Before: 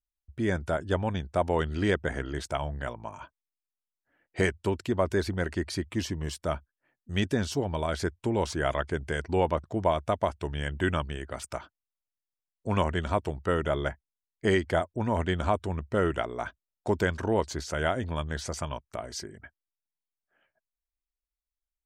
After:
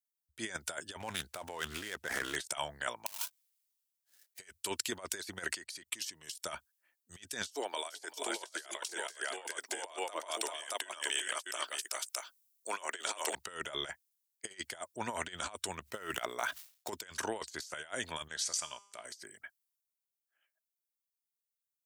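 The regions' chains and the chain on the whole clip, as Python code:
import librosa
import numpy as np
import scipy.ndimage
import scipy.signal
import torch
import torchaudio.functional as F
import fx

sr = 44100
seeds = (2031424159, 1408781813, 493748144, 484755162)

y = fx.chain(x, sr, fx.median_filter(points=9),
    fx.over_compress(threshold_db=-32.0, ratio=-1.0),
    fx.doppler_dist(depth_ms=0.23), at=(1.0, 2.36))
y = fx.chain(y, sr, fx.halfwave_hold(),
    fx.auto_swell(attack_ms=311.0), at=(3.06, 4.39))
y = fx.chain(y, sr, fx.highpass(hz=93.0, slope=12),
    fx.level_steps(step_db=21), at=(5.55, 6.35))
y = fx.chain(y, sr, fx.highpass(hz=310.0, slope=24),
    fx.high_shelf(hz=7200.0, db=6.0),
    fx.echo_multitap(ms=(391, 626), db=(-6.5, -5.5)), at=(7.51, 13.35))
y = fx.chain(y, sr, fx.median_filter(points=5),
    fx.sustainer(db_per_s=130.0), at=(15.82, 16.9))
y = fx.chain(y, sr, fx.lowpass(hz=9200.0, slope=12),
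    fx.comb_fb(f0_hz=200.0, decay_s=0.8, harmonics='all', damping=0.0, mix_pct=60), at=(18.28, 19.05))
y = np.diff(y, prepend=0.0)
y = fx.over_compress(y, sr, threshold_db=-50.0, ratio=-0.5)
y = fx.band_widen(y, sr, depth_pct=40)
y = y * librosa.db_to_amplitude(11.0)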